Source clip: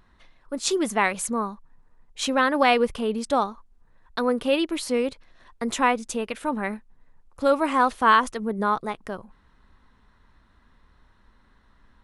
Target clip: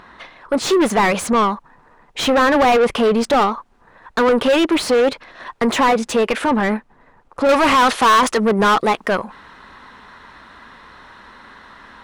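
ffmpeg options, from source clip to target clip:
ffmpeg -i in.wav -filter_complex "[0:a]asetnsamples=nb_out_samples=441:pad=0,asendcmd='6.45 lowpass f 1000;7.49 lowpass f 3500',asplit=2[link_01][link_02];[link_02]highpass=frequency=720:poles=1,volume=31dB,asoftclip=type=tanh:threshold=-6dB[link_03];[link_01][link_03]amix=inputs=2:normalize=0,lowpass=frequency=1600:poles=1,volume=-6dB" out.wav

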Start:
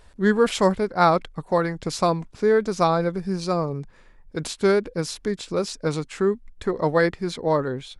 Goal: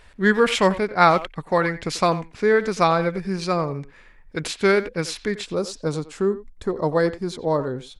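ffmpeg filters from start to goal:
ffmpeg -i in.wav -filter_complex "[0:a]asetnsamples=nb_out_samples=441:pad=0,asendcmd='5.46 equalizer g -6.5',equalizer=frequency=2200:width_type=o:width=1.3:gain=9,asplit=2[link_01][link_02];[link_02]adelay=90,highpass=300,lowpass=3400,asoftclip=type=hard:threshold=-12dB,volume=-14dB[link_03];[link_01][link_03]amix=inputs=2:normalize=0" out.wav

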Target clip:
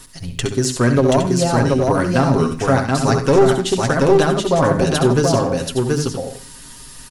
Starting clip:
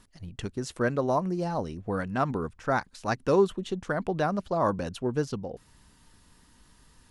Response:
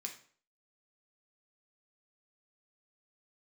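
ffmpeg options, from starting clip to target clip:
-filter_complex "[0:a]highshelf=frequency=4000:gain=11.5,bandreject=frequency=50:width_type=h:width=6,bandreject=frequency=100:width_type=h:width=6,bandreject=frequency=150:width_type=h:width=6,bandreject=frequency=200:width_type=h:width=6,bandreject=frequency=250:width_type=h:width=6,bandreject=frequency=300:width_type=h:width=6,aecho=1:1:7.4:0.63,acrossover=split=490[link_01][link_02];[link_02]acompressor=threshold=-33dB:ratio=4[link_03];[link_01][link_03]amix=inputs=2:normalize=0,aeval=exprs='clip(val(0),-1,0.0668)':channel_layout=same,aecho=1:1:67|729|813:0.376|0.708|0.316,asplit=2[link_04][link_05];[1:a]atrim=start_sample=2205,adelay=93[link_06];[link_05][link_06]afir=irnorm=-1:irlink=0,volume=-12.5dB[link_07];[link_04][link_07]amix=inputs=2:normalize=0,alimiter=level_in=14dB:limit=-1dB:release=50:level=0:latency=1,volume=-1.5dB"

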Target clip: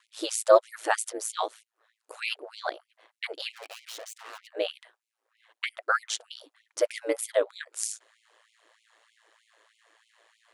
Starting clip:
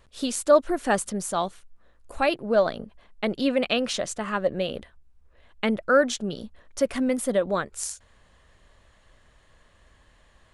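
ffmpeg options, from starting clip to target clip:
ffmpeg -i in.wav -filter_complex "[0:a]asettb=1/sr,asplit=3[link_01][link_02][link_03];[link_01]atrim=end=3.524[link_04];[link_02]atrim=start=3.52:end=4.47,asetpts=PTS-STARTPTS,afade=type=in:duration=0.004:curve=qsin,afade=type=out:start_time=0.946:duration=0.004:curve=qsin,aeval=exprs='(tanh(89.1*val(0)+0.8)-tanh(0.8))/89.1':channel_layout=same[link_05];[link_03]atrim=start=4.466[link_06];[link_04][link_05]acrossfade=duration=0.004:curve1=hsin:curve2=qsin[link_07];[link_07][link_06]acrossfade=duration=0.004:curve1=qsin:curve2=hsin,aeval=exprs='val(0)*sin(2*PI*56*n/s)':channel_layout=same,afftfilt=real='re*gte(b*sr/1024,290*pow(2100/290,0.5+0.5*sin(2*PI*3.2*pts/sr)))':imag='im*gte(b*sr/1024,290*pow(2100/290,0.5+0.5*sin(2*PI*3.2*pts/sr)))':win_size=1024:overlap=0.75,volume=2.5dB" out.wav

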